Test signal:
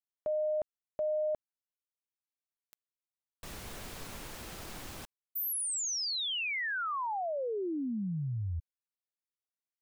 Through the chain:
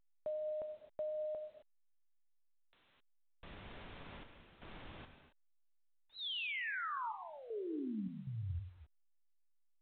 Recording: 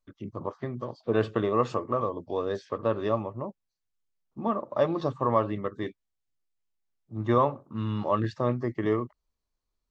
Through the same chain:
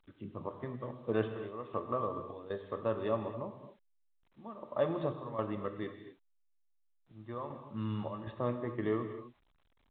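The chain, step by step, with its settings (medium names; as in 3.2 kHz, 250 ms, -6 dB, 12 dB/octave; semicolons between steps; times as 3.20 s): trance gate "xxxxxxx..xxx.xx" 78 bpm -12 dB; gated-style reverb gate 280 ms flat, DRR 7 dB; trim -7 dB; A-law 64 kbps 8 kHz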